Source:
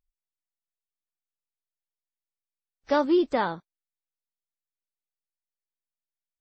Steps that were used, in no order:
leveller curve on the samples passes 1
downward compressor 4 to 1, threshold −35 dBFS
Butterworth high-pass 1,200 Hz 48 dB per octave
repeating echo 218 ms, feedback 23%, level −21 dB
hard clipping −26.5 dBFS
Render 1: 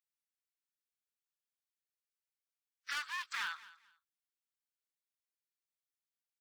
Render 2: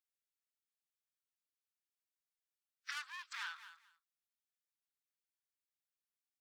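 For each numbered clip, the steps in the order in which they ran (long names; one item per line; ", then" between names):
hard clipping, then Butterworth high-pass, then leveller curve on the samples, then repeating echo, then downward compressor
hard clipping, then repeating echo, then leveller curve on the samples, then downward compressor, then Butterworth high-pass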